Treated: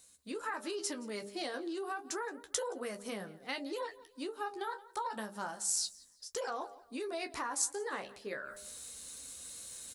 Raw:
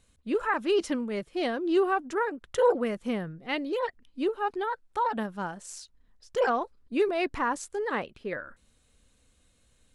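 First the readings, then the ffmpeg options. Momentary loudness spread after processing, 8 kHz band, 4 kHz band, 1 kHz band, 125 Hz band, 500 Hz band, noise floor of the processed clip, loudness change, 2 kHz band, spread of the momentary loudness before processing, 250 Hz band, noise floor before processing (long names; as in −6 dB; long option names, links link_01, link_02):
11 LU, +9.5 dB, −2.0 dB, −10.0 dB, −13.0 dB, −12.5 dB, −63 dBFS, −9.5 dB, −9.0 dB, 11 LU, −12.5 dB, −66 dBFS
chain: -filter_complex "[0:a]flanger=delay=9.8:depth=5.9:regen=-40:speed=0.31:shape=triangular,highpass=frequency=64:poles=1,asplit=2[link_01][link_02];[link_02]adelay=15,volume=-11dB[link_03];[link_01][link_03]amix=inputs=2:normalize=0,bandreject=frequency=100.9:width_type=h:width=4,bandreject=frequency=201.8:width_type=h:width=4,bandreject=frequency=302.7:width_type=h:width=4,bandreject=frequency=403.6:width_type=h:width=4,bandreject=frequency=504.5:width_type=h:width=4,bandreject=frequency=605.4:width_type=h:width=4,bandreject=frequency=706.3:width_type=h:width=4,bandreject=frequency=807.2:width_type=h:width=4,areverse,acompressor=mode=upward:threshold=-42dB:ratio=2.5,areverse,alimiter=level_in=1dB:limit=-24dB:level=0:latency=1:release=138,volume=-1dB,asplit=2[link_04][link_05];[link_05]aecho=0:1:173|346:0.075|0.024[link_06];[link_04][link_06]amix=inputs=2:normalize=0,acompressor=threshold=-34dB:ratio=6,lowshelf=frequency=240:gain=-11.5,aexciter=amount=3.6:drive=5.7:freq=4100,volume=1dB"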